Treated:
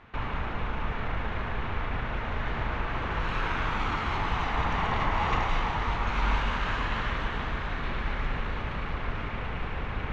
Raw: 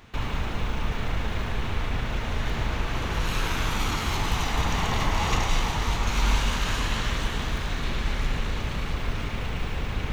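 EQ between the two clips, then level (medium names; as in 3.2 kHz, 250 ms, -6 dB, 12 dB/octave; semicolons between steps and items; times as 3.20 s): low-pass 1.5 kHz 12 dB/octave; tilt shelf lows -6 dB, about 930 Hz; +1.5 dB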